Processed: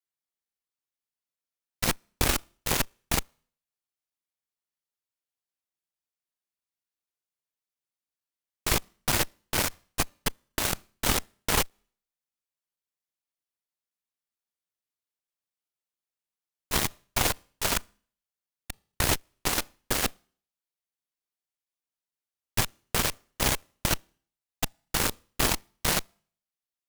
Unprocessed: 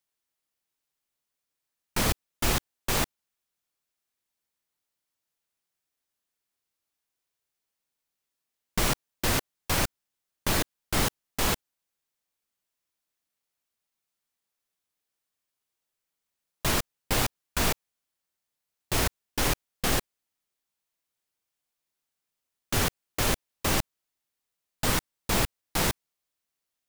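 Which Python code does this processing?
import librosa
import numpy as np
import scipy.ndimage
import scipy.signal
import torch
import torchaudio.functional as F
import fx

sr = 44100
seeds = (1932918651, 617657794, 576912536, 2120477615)

y = fx.local_reverse(x, sr, ms=228.0)
y = fx.rev_schroeder(y, sr, rt60_s=0.5, comb_ms=26, drr_db=19.5)
y = fx.cheby_harmonics(y, sr, harmonics=(4, 5, 6, 7), levels_db=(-14, -16, -7, -10), full_scale_db=-11.5)
y = F.gain(torch.from_numpy(y), -2.5).numpy()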